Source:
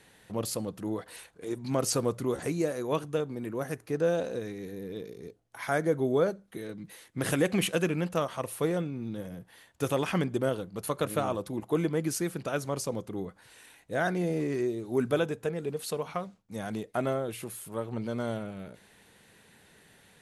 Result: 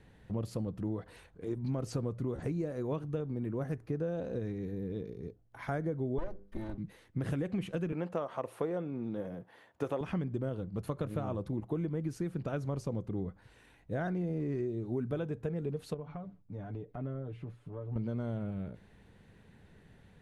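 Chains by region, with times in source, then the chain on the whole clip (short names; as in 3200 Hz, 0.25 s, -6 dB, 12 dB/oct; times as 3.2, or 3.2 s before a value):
6.18–6.78 minimum comb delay 3.3 ms + notches 50/100/150/200/250/300/350/400/450/500 Hz
7.92–10.01 HPF 480 Hz 6 dB/oct + bell 620 Hz +8.5 dB 3 oct
15.94–17.96 comb 6.9 ms, depth 72% + compressor 2:1, threshold -44 dBFS + tape spacing loss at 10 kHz 21 dB
whole clip: RIAA curve playback; compressor, threshold -26 dBFS; gain -5 dB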